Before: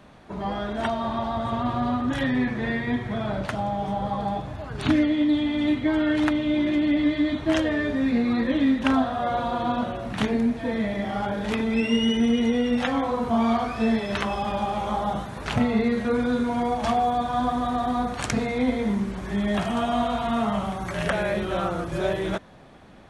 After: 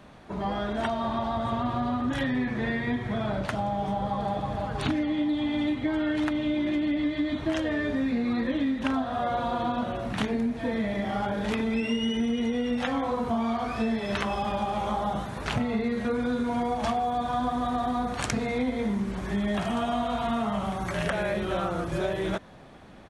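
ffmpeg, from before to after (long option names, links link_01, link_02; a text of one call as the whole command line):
ffmpeg -i in.wav -filter_complex "[0:a]asplit=2[link_01][link_02];[link_02]afade=type=in:start_time=3.92:duration=0.01,afade=type=out:start_time=4.34:duration=0.01,aecho=0:1:320|640|960|1280|1600|1920|2240|2560|2880|3200|3520|3840:0.562341|0.393639|0.275547|0.192883|0.135018|0.0945127|0.0661589|0.0463112|0.0324179|0.0226925|0.0158848|0.0111193[link_03];[link_01][link_03]amix=inputs=2:normalize=0,acompressor=threshold=-24dB:ratio=6" out.wav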